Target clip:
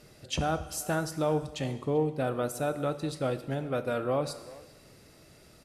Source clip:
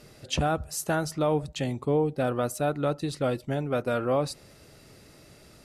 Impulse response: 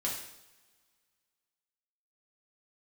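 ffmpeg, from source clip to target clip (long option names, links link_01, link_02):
-filter_complex "[0:a]asplit=2[link_01][link_02];[link_02]adelay=390,highpass=300,lowpass=3400,asoftclip=type=hard:threshold=-22.5dB,volume=-18dB[link_03];[link_01][link_03]amix=inputs=2:normalize=0,asplit=2[link_04][link_05];[1:a]atrim=start_sample=2205,asetrate=28665,aresample=44100,highshelf=frequency=10000:gain=6[link_06];[link_05][link_06]afir=irnorm=-1:irlink=0,volume=-15.5dB[link_07];[link_04][link_07]amix=inputs=2:normalize=0,volume=-5dB"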